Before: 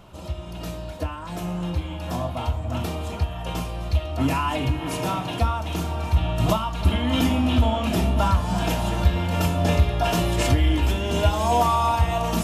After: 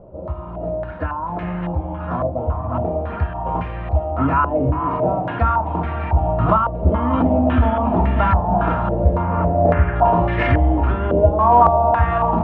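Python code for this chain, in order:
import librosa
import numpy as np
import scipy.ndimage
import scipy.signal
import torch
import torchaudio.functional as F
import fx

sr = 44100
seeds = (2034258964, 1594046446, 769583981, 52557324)

y = fx.cvsd(x, sr, bps=16000, at=(9.22, 9.96))
y = fx.air_absorb(y, sr, metres=190.0)
y = y + 10.0 ** (-14.0 / 20.0) * np.pad(y, (int(404 * sr / 1000.0), 0))[:len(y)]
y = fx.filter_held_lowpass(y, sr, hz=3.6, low_hz=550.0, high_hz=1900.0)
y = y * 10.0 ** (3.0 / 20.0)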